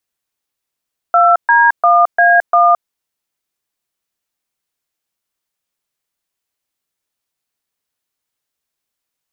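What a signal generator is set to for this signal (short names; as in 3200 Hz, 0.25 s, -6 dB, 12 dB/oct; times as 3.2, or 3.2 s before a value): DTMF "2D1A1", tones 0.218 s, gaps 0.13 s, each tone -9 dBFS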